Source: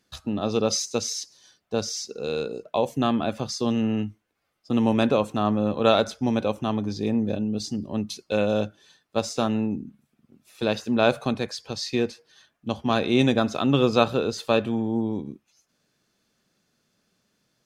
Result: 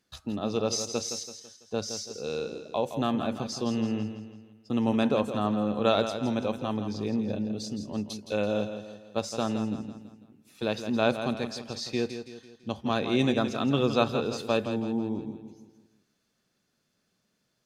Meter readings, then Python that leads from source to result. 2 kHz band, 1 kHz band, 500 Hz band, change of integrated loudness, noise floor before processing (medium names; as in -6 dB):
-4.5 dB, -4.5 dB, -4.5 dB, -4.5 dB, -75 dBFS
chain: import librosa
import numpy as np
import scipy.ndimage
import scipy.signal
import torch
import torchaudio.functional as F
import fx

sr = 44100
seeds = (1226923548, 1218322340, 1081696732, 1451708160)

y = fx.echo_feedback(x, sr, ms=166, feedback_pct=45, wet_db=-9.5)
y = F.gain(torch.from_numpy(y), -5.0).numpy()